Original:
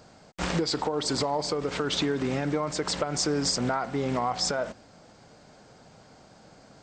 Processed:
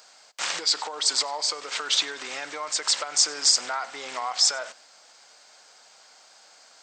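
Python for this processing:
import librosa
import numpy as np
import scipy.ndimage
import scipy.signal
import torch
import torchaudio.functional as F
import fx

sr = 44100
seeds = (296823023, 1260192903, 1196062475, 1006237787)

y = scipy.signal.sosfilt(scipy.signal.butter(2, 880.0, 'highpass', fs=sr, output='sos'), x)
y = fx.high_shelf(y, sr, hz=2600.0, db=10.5)
y = y + 10.0 ** (-23.0 / 20.0) * np.pad(y, (int(97 * sr / 1000.0), 0))[:len(y)]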